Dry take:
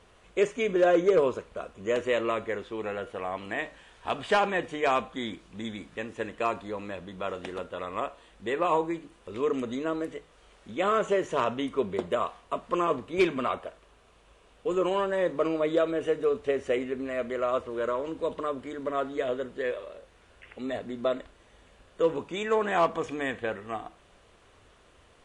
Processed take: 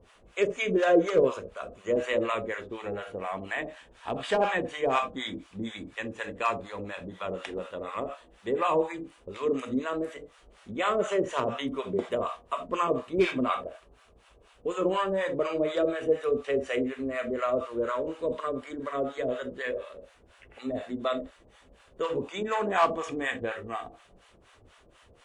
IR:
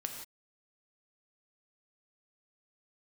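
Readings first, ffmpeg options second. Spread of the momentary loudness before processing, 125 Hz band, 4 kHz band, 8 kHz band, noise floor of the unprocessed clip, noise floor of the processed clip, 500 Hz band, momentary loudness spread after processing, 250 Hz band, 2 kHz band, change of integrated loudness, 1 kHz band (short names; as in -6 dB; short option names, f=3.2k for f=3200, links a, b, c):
12 LU, +0.5 dB, +0.5 dB, n/a, -59 dBFS, -60 dBFS, -1.0 dB, 12 LU, 0.0 dB, +0.5 dB, -0.5 dB, -0.5 dB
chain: -filter_complex "[1:a]atrim=start_sample=2205,afade=t=out:st=0.14:d=0.01,atrim=end_sample=6615[a];[0:a][a]afir=irnorm=-1:irlink=0,acrossover=split=670[b][c];[b]aeval=exprs='val(0)*(1-1/2+1/2*cos(2*PI*4.1*n/s))':c=same[d];[c]aeval=exprs='val(0)*(1-1/2-1/2*cos(2*PI*4.1*n/s))':c=same[e];[d][e]amix=inputs=2:normalize=0,volume=5.5dB"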